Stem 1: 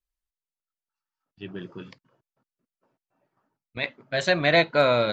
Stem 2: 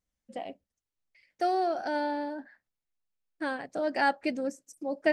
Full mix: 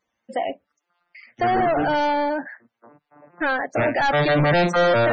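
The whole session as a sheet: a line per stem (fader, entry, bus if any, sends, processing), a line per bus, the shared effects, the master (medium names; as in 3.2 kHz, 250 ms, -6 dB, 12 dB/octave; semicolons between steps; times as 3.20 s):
-1.5 dB, 0.00 s, no send, vocoder on a broken chord major triad, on A#2, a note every 411 ms
-12.0 dB, 0.00 s, no send, none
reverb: none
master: overdrive pedal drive 38 dB, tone 3.6 kHz, clips at -11.5 dBFS; loudest bins only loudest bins 64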